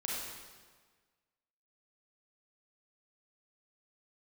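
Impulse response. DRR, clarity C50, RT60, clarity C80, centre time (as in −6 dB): −5.0 dB, −2.0 dB, 1.5 s, 1.0 dB, 98 ms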